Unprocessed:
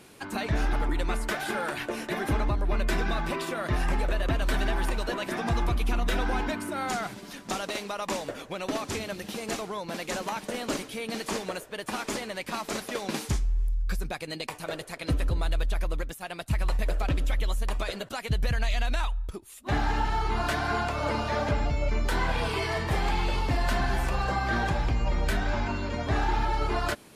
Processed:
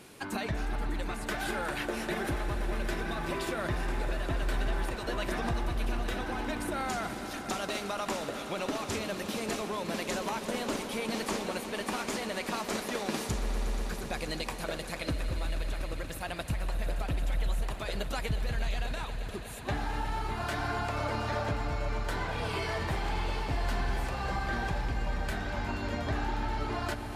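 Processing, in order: compressor, threshold -30 dBFS, peak gain reduction 8.5 dB; on a send: swelling echo 0.12 s, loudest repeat 5, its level -15 dB

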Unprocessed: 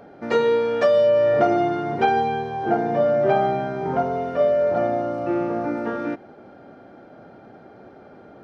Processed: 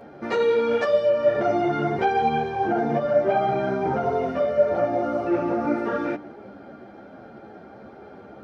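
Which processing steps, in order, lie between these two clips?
limiter -16 dBFS, peak gain reduction 10 dB; on a send at -15 dB: reverb RT60 1.2 s, pre-delay 3 ms; on the sum: ensemble effect; gain +5 dB

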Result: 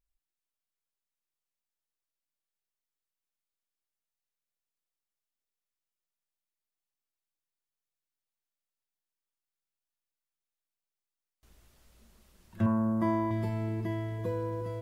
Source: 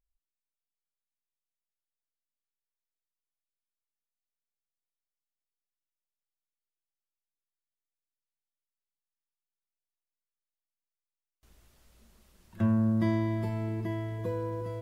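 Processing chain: 12.66–13.31 ten-band EQ 125 Hz -8 dB, 1000 Hz +9 dB, 2000 Hz -3 dB, 4000 Hz -11 dB

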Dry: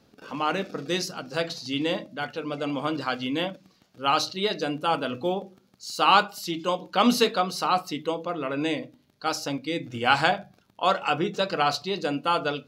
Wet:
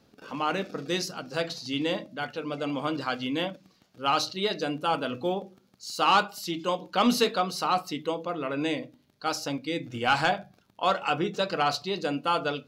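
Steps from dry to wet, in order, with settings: soft clip -9.5 dBFS, distortion -20 dB; gain -1.5 dB

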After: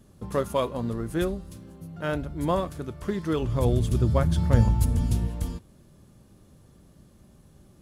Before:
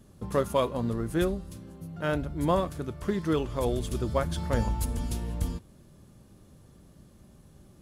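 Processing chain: 1.21–1.74 crackle 38/s -> 160/s -57 dBFS; 3.42–5.28 bell 110 Hz +12 dB 2 oct

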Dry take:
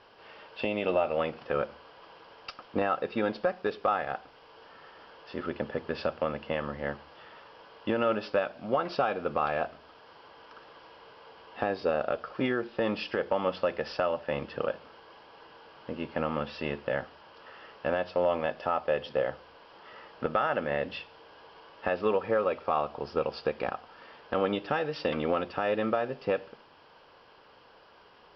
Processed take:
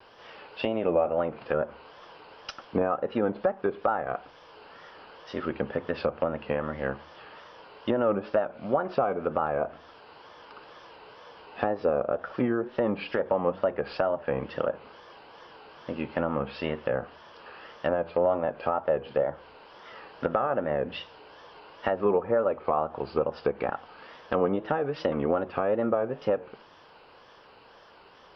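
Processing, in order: wow and flutter 120 cents; treble ducked by the level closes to 1100 Hz, closed at -25.5 dBFS; gain +3 dB

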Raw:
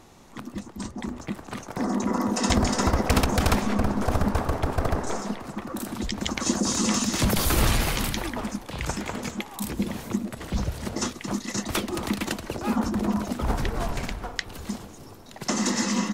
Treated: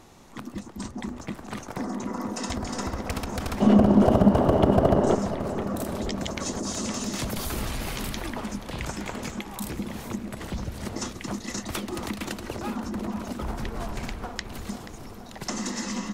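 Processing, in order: compressor 4:1, threshold -29 dBFS, peak gain reduction 11.5 dB; 3.6–5.15 small resonant body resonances 200/360/570/2900 Hz, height 17 dB, ringing for 20 ms; darkening echo 0.482 s, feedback 72%, low-pass 3700 Hz, level -12 dB

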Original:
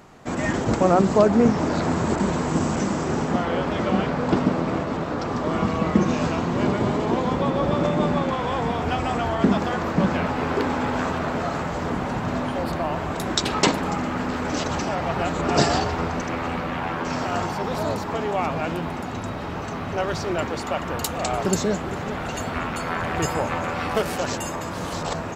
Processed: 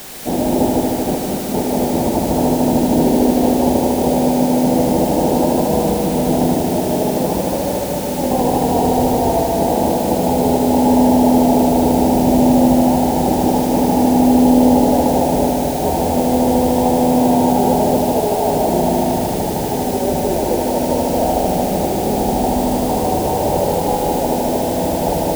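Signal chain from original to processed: steep low-pass 910 Hz 96 dB/oct; bell 110 Hz -9.5 dB 1.1 oct; negative-ratio compressor -27 dBFS, ratio -0.5; added noise white -42 dBFS; multi-head echo 76 ms, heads all three, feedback 72%, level -8 dB; gain +8 dB

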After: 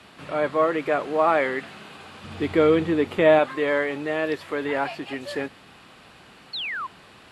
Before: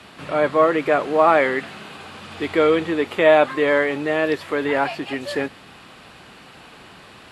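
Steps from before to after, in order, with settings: 2.24–3.39 low shelf 320 Hz +11 dB; 6.53–6.87 painted sound fall 970–4500 Hz -25 dBFS; gain -5 dB

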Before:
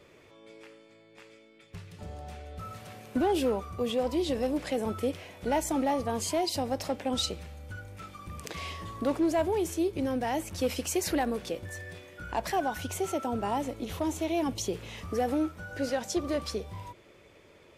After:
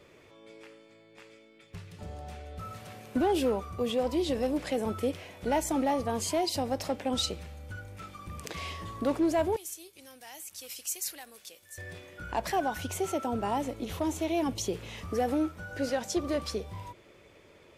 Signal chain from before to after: 9.56–11.78 pre-emphasis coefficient 0.97

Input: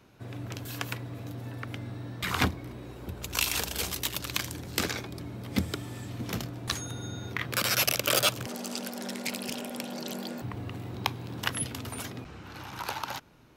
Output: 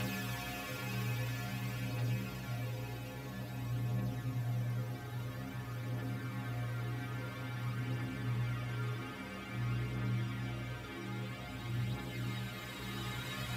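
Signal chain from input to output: metallic resonator 62 Hz, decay 0.49 s, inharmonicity 0.008; Paulstretch 13×, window 1.00 s, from 1; phaser 0.5 Hz, delay 2.7 ms, feedback 31%; gain +7.5 dB

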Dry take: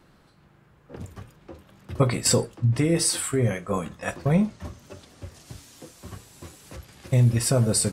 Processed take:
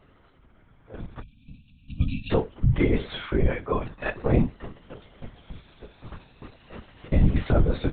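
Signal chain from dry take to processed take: moving spectral ripple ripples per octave 1.7, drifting +0.43 Hz, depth 7 dB; LPC vocoder at 8 kHz whisper; spectral gain 1.23–2.3, 280–2300 Hz -30 dB

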